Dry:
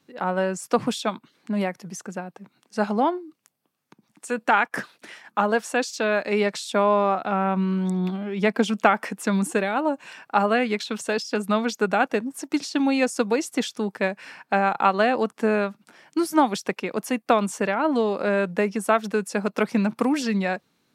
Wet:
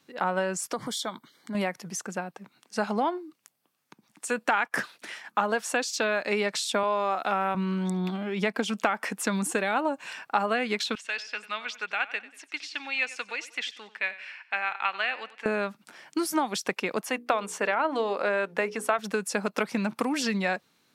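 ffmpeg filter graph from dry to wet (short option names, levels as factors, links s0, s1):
-filter_complex "[0:a]asettb=1/sr,asplit=3[s0][s1][s2];[s0]atrim=end=0.734[s3];[s1]atrim=start=0.73:end=1.55,asetpts=PTS-STARTPTS,afade=t=in:d=0.004:c=qsin,afade=t=out:st=0.816:d=0.004:c=qsin,asuperstop=centerf=2600:order=8:qfactor=4.3,highshelf=f=9700:g=6.5,acompressor=threshold=0.02:ratio=2:attack=3.2:release=140:knee=1:detection=peak[s4];[s2]atrim=start=1.546[s5];[s3][s4]acrossfade=d=0.004:c1=hsin:c2=qsin[s6];[s6][s5]acrossfade=d=0.004:c1=qsin:c2=hsin,asettb=1/sr,asplit=3[s7][s8][s9];[s7]atrim=end=6.834[s10];[s8]atrim=start=6.83:end=7.55,asetpts=PTS-STARTPTS,afade=t=in:d=0.004:c=qsin,afade=t=out:st=0.716:d=0.004:c=qsin,highpass=230,aemphasis=mode=production:type=cd[s11];[s9]atrim=start=7.546[s12];[s10][s11]acrossfade=d=0.004:c1=hsin:c2=qsin[s13];[s13][s12]acrossfade=d=0.004:c1=qsin:c2=hsin,asettb=1/sr,asplit=3[s14][s15][s16];[s14]atrim=end=10.954[s17];[s15]atrim=start=10.95:end=15.46,asetpts=PTS-STARTPTS,afade=t=in:d=0.004:c=qsin,afade=t=out:st=4.506:d=0.004:c=qsin,bandpass=f=2400:t=q:w=1.9,aecho=1:1:94|188|282:0.15|0.0598|0.0239,atrim=end_sample=198891[s18];[s16]atrim=start=15.456[s19];[s17][s18]acrossfade=d=0.004:c1=hsin:c2=qsin[s20];[s20][s19]acrossfade=d=0.004:c1=qsin:c2=hsin,asettb=1/sr,asplit=3[s21][s22][s23];[s21]atrim=end=17.014[s24];[s22]atrim=start=17.01:end=18.99,asetpts=PTS-STARTPTS,afade=t=in:d=0.004:c=qsin,afade=t=out:st=1.976:d=0.004:c=qsin,bass=f=250:g=-12,treble=f=4000:g=-6,bandreject=f=60:t=h:w=6,bandreject=f=120:t=h:w=6,bandreject=f=180:t=h:w=6,bandreject=f=240:t=h:w=6,bandreject=f=300:t=h:w=6,bandreject=f=360:t=h:w=6,bandreject=f=420:t=h:w=6,bandreject=f=480:t=h:w=6[s25];[s23]atrim=start=18.986[s26];[s24][s25]acrossfade=d=0.004:c1=hsin:c2=qsin[s27];[s27][s26]acrossfade=d=0.004:c1=qsin:c2=hsin,acompressor=threshold=0.0794:ratio=6,tiltshelf=f=630:g=-3.5"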